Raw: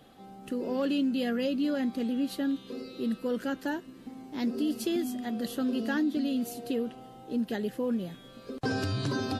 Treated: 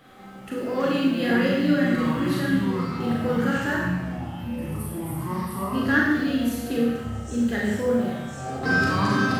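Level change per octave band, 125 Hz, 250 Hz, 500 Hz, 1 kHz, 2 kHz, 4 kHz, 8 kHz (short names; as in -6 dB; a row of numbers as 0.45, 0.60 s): +11.5, +6.0, +6.5, +11.5, +15.0, +5.0, +6.0 dB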